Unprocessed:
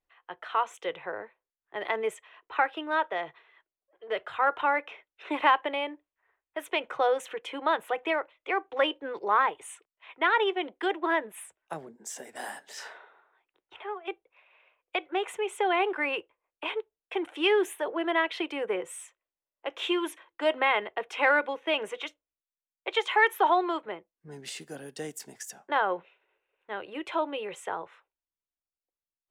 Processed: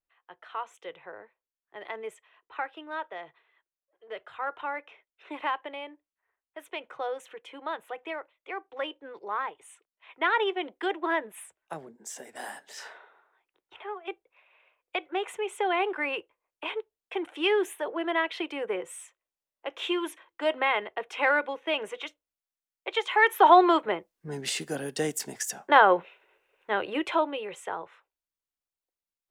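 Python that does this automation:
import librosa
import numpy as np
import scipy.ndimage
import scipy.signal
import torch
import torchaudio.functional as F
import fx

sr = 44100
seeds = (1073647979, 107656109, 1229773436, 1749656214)

y = fx.gain(x, sr, db=fx.line((9.71, -8.0), (10.22, -1.0), (23.12, -1.0), (23.6, 8.5), (26.92, 8.5), (27.41, -0.5)))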